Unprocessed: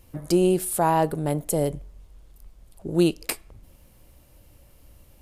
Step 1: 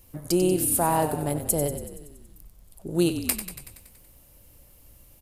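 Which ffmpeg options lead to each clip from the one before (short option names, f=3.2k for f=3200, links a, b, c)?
-filter_complex "[0:a]highshelf=f=7.1k:g=11,asplit=2[a][b];[b]asplit=8[c][d][e][f][g][h][i][j];[c]adelay=94,afreqshift=-33,volume=-10dB[k];[d]adelay=188,afreqshift=-66,volume=-13.9dB[l];[e]adelay=282,afreqshift=-99,volume=-17.8dB[m];[f]adelay=376,afreqshift=-132,volume=-21.6dB[n];[g]adelay=470,afreqshift=-165,volume=-25.5dB[o];[h]adelay=564,afreqshift=-198,volume=-29.4dB[p];[i]adelay=658,afreqshift=-231,volume=-33.3dB[q];[j]adelay=752,afreqshift=-264,volume=-37.1dB[r];[k][l][m][n][o][p][q][r]amix=inputs=8:normalize=0[s];[a][s]amix=inputs=2:normalize=0,volume=-3dB"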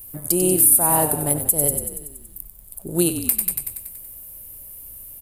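-af "aexciter=amount=5.8:drive=5.3:freq=8.2k,alimiter=limit=-6dB:level=0:latency=1:release=182,volume=2.5dB"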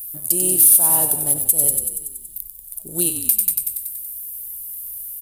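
-af "aexciter=amount=1.9:drive=9.3:freq=2.9k,volume=-7.5dB"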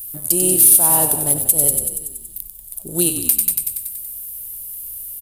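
-filter_complex "[0:a]highshelf=f=9.3k:g=-7,asplit=2[a][b];[b]adelay=192.4,volume=-16dB,highshelf=f=4k:g=-4.33[c];[a][c]amix=inputs=2:normalize=0,volume=5.5dB"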